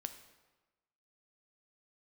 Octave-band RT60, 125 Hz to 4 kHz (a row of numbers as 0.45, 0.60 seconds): 1.2, 1.2, 1.2, 1.2, 1.0, 0.90 seconds